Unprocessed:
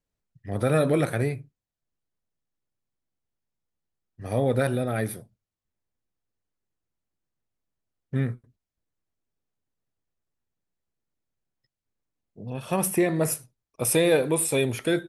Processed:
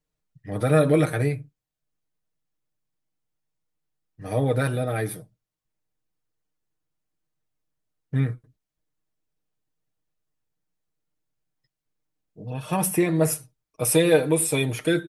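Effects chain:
comb filter 6.5 ms

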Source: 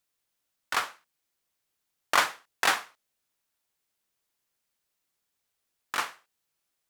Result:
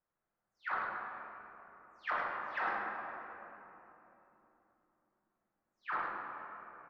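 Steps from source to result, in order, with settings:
every frequency bin delayed by itself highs early, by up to 250 ms
low-pass filter 1,600 Hz 24 dB per octave
downward compressor 5 to 1, threshold −35 dBFS, peak gain reduction 13.5 dB
soft clipping −24 dBFS, distortion −27 dB
single-tap delay 104 ms −4.5 dB
rectangular room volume 190 cubic metres, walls hard, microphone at 0.48 metres

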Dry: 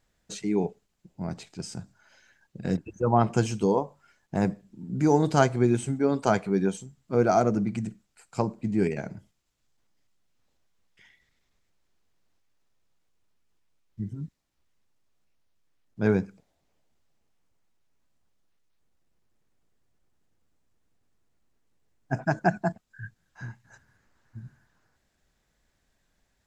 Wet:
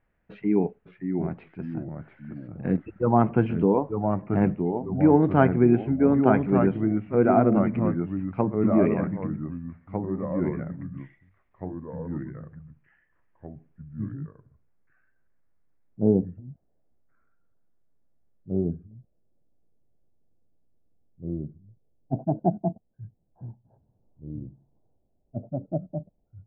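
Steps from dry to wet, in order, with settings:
Butterworth low-pass 2,500 Hz 36 dB per octave, from 0:14.12 750 Hz
dynamic equaliser 270 Hz, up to +6 dB, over −36 dBFS, Q 1.6
delay with pitch and tempo change per echo 524 ms, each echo −2 semitones, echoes 3, each echo −6 dB

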